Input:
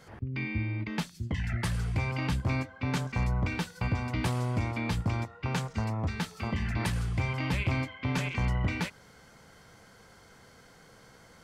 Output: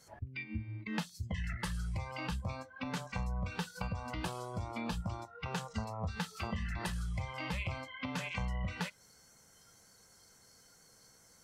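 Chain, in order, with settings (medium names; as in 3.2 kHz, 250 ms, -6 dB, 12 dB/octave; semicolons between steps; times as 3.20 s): compression 6:1, threshold -35 dBFS, peak gain reduction 10.5 dB; spectral noise reduction 15 dB; trim +3 dB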